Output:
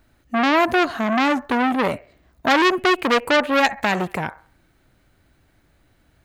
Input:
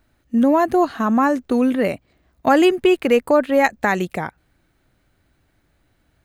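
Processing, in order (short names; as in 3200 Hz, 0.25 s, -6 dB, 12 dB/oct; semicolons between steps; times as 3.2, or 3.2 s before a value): on a send: band-limited delay 66 ms, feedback 34%, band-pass 1100 Hz, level -17.5 dB; on the sum: core saturation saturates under 2700 Hz; gain +3.5 dB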